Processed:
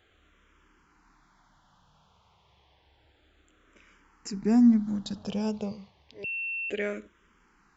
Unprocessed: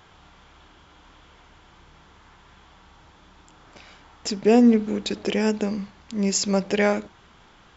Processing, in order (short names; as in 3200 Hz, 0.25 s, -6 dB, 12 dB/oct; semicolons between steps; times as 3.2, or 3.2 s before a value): 4.33–5.72 low shelf 260 Hz +11 dB; 6.24–6.7 bleep 2700 Hz -21.5 dBFS; endless phaser -0.3 Hz; gain -8.5 dB